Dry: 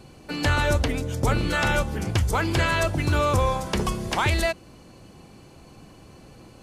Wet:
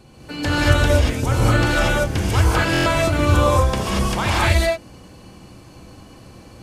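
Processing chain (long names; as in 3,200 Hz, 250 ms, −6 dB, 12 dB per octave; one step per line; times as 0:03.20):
reverb whose tail is shaped and stops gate 260 ms rising, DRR −6 dB
buffer that repeats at 0:02.72, samples 1,024, times 5
level −1.5 dB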